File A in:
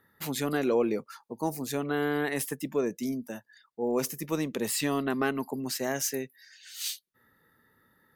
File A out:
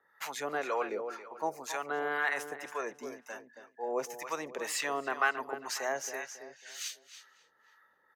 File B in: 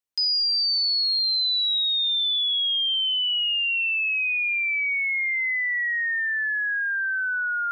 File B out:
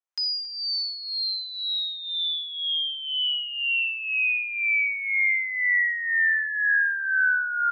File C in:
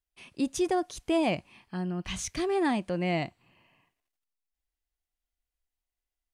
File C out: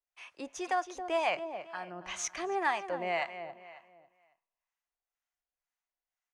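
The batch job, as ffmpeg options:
ffmpeg -i in.wav -filter_complex "[0:a]equalizer=frequency=100:width_type=o:width=0.67:gain=-8,equalizer=frequency=250:width_type=o:width=0.67:gain=-3,equalizer=frequency=6300:width_type=o:width=0.67:gain=12,asplit=2[link_01][link_02];[link_02]adelay=274,lowpass=frequency=4400:poles=1,volume=-10dB,asplit=2[link_03][link_04];[link_04]adelay=274,lowpass=frequency=4400:poles=1,volume=0.36,asplit=2[link_05][link_06];[link_06]adelay=274,lowpass=frequency=4400:poles=1,volume=0.36,asplit=2[link_07][link_08];[link_08]adelay=274,lowpass=frequency=4400:poles=1,volume=0.36[link_09];[link_01][link_03][link_05][link_07][link_09]amix=inputs=5:normalize=0,acrossover=split=740[link_10][link_11];[link_10]aeval=exprs='val(0)*(1-0.7/2+0.7/2*cos(2*PI*2*n/s))':channel_layout=same[link_12];[link_11]aeval=exprs='val(0)*(1-0.7/2-0.7/2*cos(2*PI*2*n/s))':channel_layout=same[link_13];[link_12][link_13]amix=inputs=2:normalize=0,acrossover=split=560 2400:gain=0.0708 1 0.126[link_14][link_15][link_16];[link_14][link_15][link_16]amix=inputs=3:normalize=0,volume=6.5dB" out.wav

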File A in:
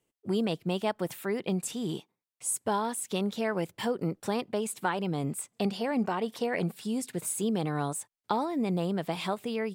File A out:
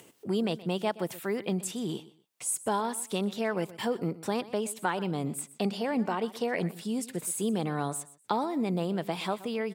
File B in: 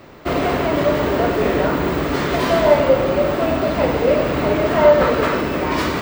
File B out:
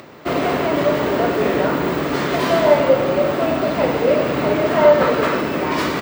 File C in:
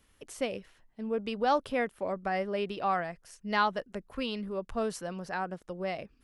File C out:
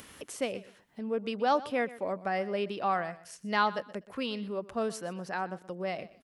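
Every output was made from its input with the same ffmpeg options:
ffmpeg -i in.wav -filter_complex "[0:a]highpass=120,acompressor=mode=upward:threshold=-37dB:ratio=2.5,asplit=2[link_01][link_02];[link_02]aecho=0:1:124|248:0.133|0.0307[link_03];[link_01][link_03]amix=inputs=2:normalize=0" out.wav

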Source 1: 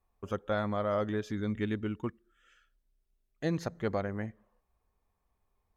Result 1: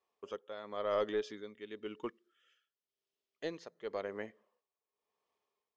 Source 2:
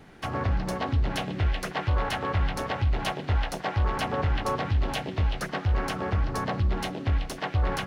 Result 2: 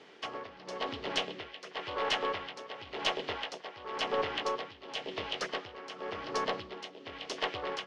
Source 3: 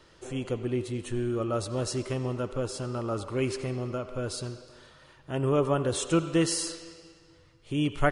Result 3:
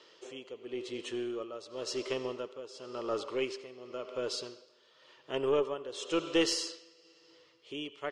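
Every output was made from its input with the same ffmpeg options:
ffmpeg -i in.wav -af "highpass=420,equalizer=frequency=430:width_type=q:width=4:gain=6,equalizer=frequency=770:width_type=q:width=4:gain=-5,equalizer=frequency=1500:width_type=q:width=4:gain=-5,equalizer=frequency=3100:width_type=q:width=4:gain=6,equalizer=frequency=5000:width_type=q:width=4:gain=3,lowpass=frequency=6800:width=0.5412,lowpass=frequency=6800:width=1.3066,tremolo=f=0.94:d=0.77,aeval=exprs='0.2*(cos(1*acos(clip(val(0)/0.2,-1,1)))-cos(1*PI/2))+0.0316*(cos(2*acos(clip(val(0)/0.2,-1,1)))-cos(2*PI/2))':channel_layout=same" out.wav

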